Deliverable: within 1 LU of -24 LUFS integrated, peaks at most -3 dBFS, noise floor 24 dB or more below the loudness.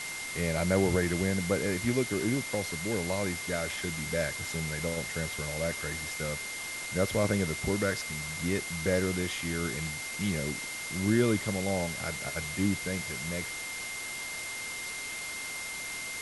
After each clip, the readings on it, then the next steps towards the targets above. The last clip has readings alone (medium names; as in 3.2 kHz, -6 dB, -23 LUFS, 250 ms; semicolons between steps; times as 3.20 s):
steady tone 2.1 kHz; tone level -38 dBFS; noise floor -38 dBFS; noise floor target -56 dBFS; loudness -31.5 LUFS; peak level -13.0 dBFS; loudness target -24.0 LUFS
-> band-stop 2.1 kHz, Q 30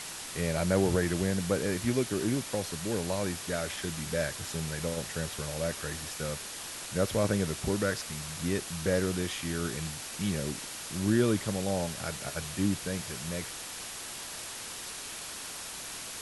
steady tone not found; noise floor -41 dBFS; noise floor target -56 dBFS
-> noise print and reduce 15 dB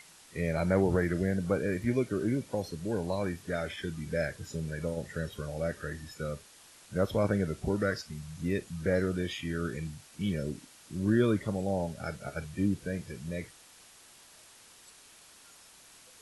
noise floor -56 dBFS; noise floor target -57 dBFS
-> noise print and reduce 6 dB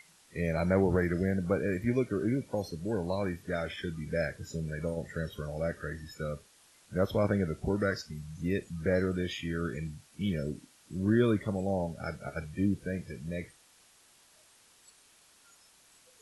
noise floor -62 dBFS; loudness -32.5 LUFS; peak level -14.0 dBFS; loudness target -24.0 LUFS
-> trim +8.5 dB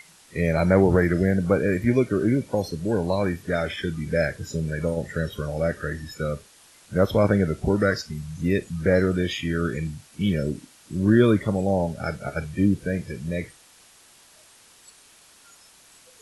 loudness -24.0 LUFS; peak level -5.5 dBFS; noise floor -54 dBFS